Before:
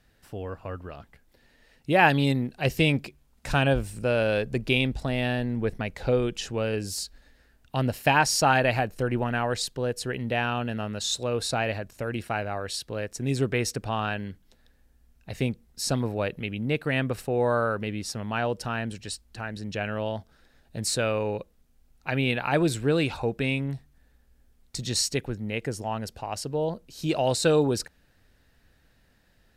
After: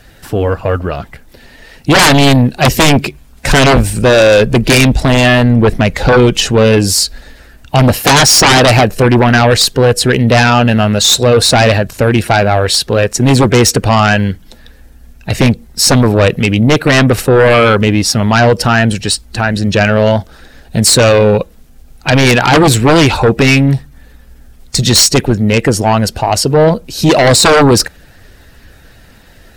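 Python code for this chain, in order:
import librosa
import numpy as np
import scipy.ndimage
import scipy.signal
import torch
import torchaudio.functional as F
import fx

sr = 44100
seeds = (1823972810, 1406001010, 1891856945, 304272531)

y = fx.spec_quant(x, sr, step_db=15)
y = fx.fold_sine(y, sr, drive_db=17, ceiling_db=-5.0)
y = F.gain(torch.from_numpy(y), 2.0).numpy()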